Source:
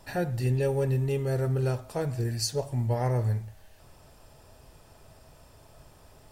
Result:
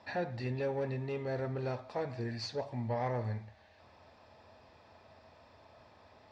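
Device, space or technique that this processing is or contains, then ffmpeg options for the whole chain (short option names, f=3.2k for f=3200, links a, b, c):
overdrive pedal into a guitar cabinet: -filter_complex "[0:a]asplit=2[a][b];[b]highpass=f=720:p=1,volume=15dB,asoftclip=type=tanh:threshold=-16dB[c];[a][c]amix=inputs=2:normalize=0,lowpass=f=6.9k:p=1,volume=-6dB,highpass=76,equalizer=f=85:t=q:w=4:g=9,equalizer=f=150:t=q:w=4:g=-6,equalizer=f=220:t=q:w=4:g=6,equalizer=f=400:t=q:w=4:g=-4,equalizer=f=1.4k:t=q:w=4:g=-6,equalizer=f=3k:t=q:w=4:g=-9,lowpass=f=4.1k:w=0.5412,lowpass=f=4.1k:w=1.3066,equalizer=f=9.6k:t=o:w=0.87:g=2.5,volume=-7.5dB"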